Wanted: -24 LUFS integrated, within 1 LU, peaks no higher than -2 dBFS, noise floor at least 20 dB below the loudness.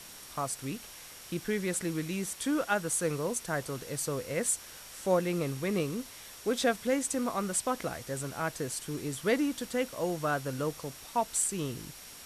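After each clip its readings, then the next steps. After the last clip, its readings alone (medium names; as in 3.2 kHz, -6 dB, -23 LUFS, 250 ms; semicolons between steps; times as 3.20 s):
steady tone 5.6 kHz; tone level -56 dBFS; noise floor -49 dBFS; noise floor target -53 dBFS; loudness -32.5 LUFS; peak level -14.5 dBFS; loudness target -24.0 LUFS
-> band-stop 5.6 kHz, Q 30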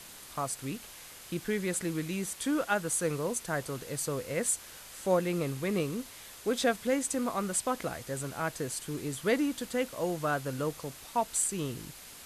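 steady tone not found; noise floor -49 dBFS; noise floor target -53 dBFS
-> noise reduction 6 dB, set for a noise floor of -49 dBFS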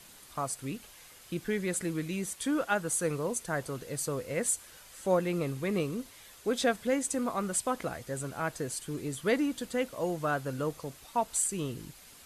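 noise floor -54 dBFS; loudness -32.5 LUFS; peak level -14.5 dBFS; loudness target -24.0 LUFS
-> trim +8.5 dB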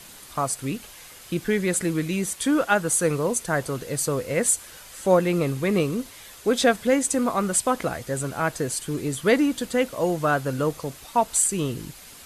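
loudness -24.0 LUFS; peak level -6.0 dBFS; noise floor -45 dBFS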